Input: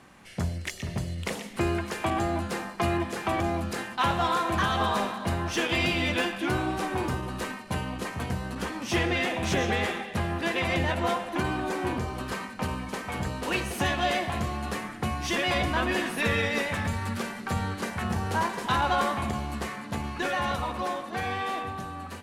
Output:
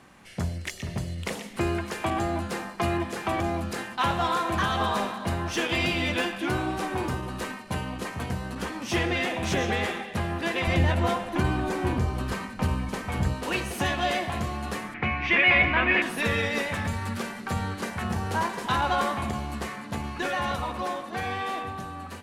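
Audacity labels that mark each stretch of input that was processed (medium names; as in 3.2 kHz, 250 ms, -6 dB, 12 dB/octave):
10.670000	13.340000	bass shelf 150 Hz +11 dB
14.940000	16.020000	resonant low-pass 2.3 kHz, resonance Q 5.4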